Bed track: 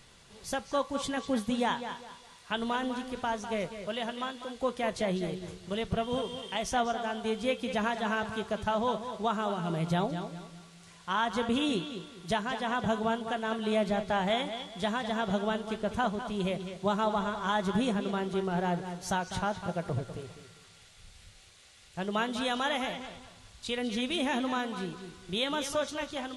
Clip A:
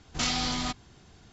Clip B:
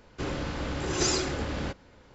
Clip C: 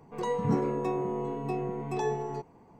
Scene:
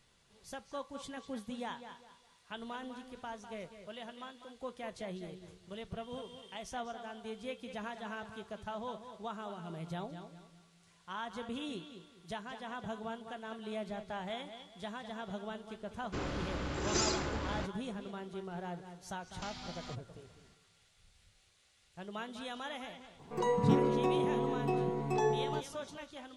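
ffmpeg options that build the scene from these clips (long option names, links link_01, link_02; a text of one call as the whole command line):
ffmpeg -i bed.wav -i cue0.wav -i cue1.wav -i cue2.wav -filter_complex "[0:a]volume=-12dB[link_01];[2:a]equalizer=frequency=1200:width_type=o:width=0.77:gain=2.5[link_02];[1:a]acrossover=split=360|6200[link_03][link_04][link_05];[link_03]acompressor=threshold=-42dB:ratio=4[link_06];[link_04]acompressor=threshold=-38dB:ratio=4[link_07];[link_05]acompressor=threshold=-57dB:ratio=4[link_08];[link_06][link_07][link_08]amix=inputs=3:normalize=0[link_09];[link_02]atrim=end=2.14,asetpts=PTS-STARTPTS,volume=-6dB,afade=type=in:duration=0.004:curve=hsin,afade=type=out:start_time=2.136:duration=0.004:curve=hsin,adelay=15940[link_10];[link_09]atrim=end=1.32,asetpts=PTS-STARTPTS,volume=-10dB,afade=type=in:duration=0.004:curve=hsin,afade=type=out:start_time=1.316:duration=0.004:curve=hsin,adelay=19230[link_11];[3:a]atrim=end=2.79,asetpts=PTS-STARTPTS,volume=-0.5dB,afade=type=in:duration=0.004:curve=hsin,afade=type=out:start_time=2.786:duration=0.004:curve=hsin,adelay=23190[link_12];[link_01][link_10][link_11][link_12]amix=inputs=4:normalize=0" out.wav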